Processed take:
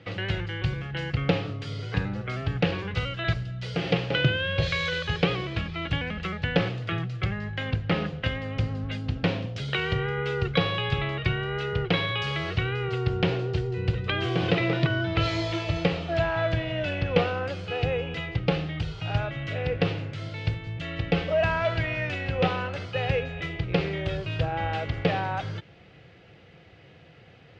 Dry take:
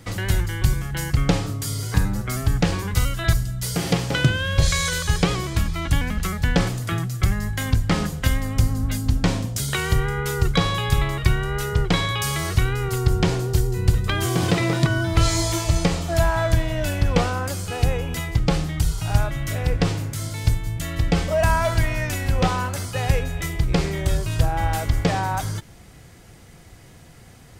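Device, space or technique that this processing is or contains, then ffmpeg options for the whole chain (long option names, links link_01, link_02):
guitar cabinet: -filter_complex "[0:a]asettb=1/sr,asplit=3[link_01][link_02][link_03];[link_01]atrim=end=7.254[link_04];[link_02]atrim=start=7.25:end=8.4,asetpts=PTS-STARTPTS,afade=type=in:duration=0.004:curve=qsin,afade=type=out:start_time=1.146:duration=0.004:curve=qsin,highshelf=frequency=5300:gain=-5.5[link_05];[link_03]atrim=start=8.396[link_06];[link_04][link_05]acrossfade=duration=0.004:curve1=hsin:curve2=qsin[link_07];[link_07][link_06]acrossfade=duration=0.004:curve1=qsin:curve2=hsin,highpass=110,equalizer=frequency=240:width_type=q:width=4:gain=-7,equalizer=frequency=500:width_type=q:width=4:gain=5,equalizer=frequency=1000:width_type=q:width=4:gain=-6,equalizer=frequency=2700:width_type=q:width=4:gain=6,lowpass=frequency=3800:width=0.5412,lowpass=frequency=3800:width=1.3066,volume=-3dB"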